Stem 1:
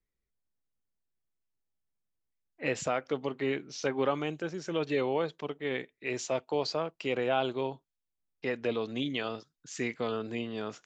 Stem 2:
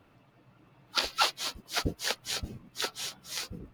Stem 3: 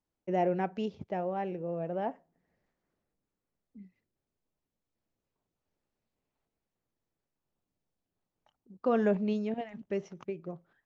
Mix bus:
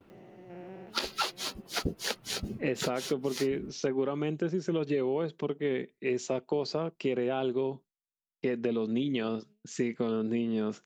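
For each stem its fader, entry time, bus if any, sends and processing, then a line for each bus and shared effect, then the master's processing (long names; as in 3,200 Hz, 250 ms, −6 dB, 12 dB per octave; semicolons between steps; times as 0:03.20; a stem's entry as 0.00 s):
−0.5 dB, 0.00 s, no send, parametric band 170 Hz +4.5 dB 1.9 octaves
−1.5 dB, 0.00 s, no send, no processing
−12.0 dB, 0.10 s, no send, spectrum averaged block by block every 400 ms; tilt shelving filter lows −8 dB; automatic ducking −23 dB, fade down 1.90 s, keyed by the first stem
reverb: not used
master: noise gate with hold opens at −56 dBFS; hollow resonant body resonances 210/370 Hz, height 9 dB, ringing for 30 ms; downward compressor, threshold −26 dBFS, peak gain reduction 9.5 dB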